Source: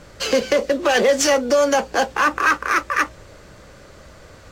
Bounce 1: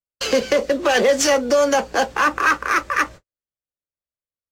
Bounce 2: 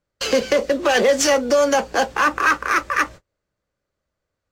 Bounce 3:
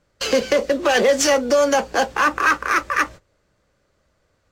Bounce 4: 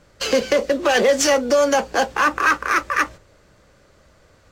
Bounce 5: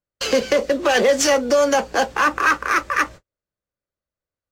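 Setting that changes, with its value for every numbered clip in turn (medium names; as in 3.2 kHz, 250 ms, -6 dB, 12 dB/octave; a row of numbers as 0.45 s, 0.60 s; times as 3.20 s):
gate, range: -60 dB, -36 dB, -22 dB, -10 dB, -48 dB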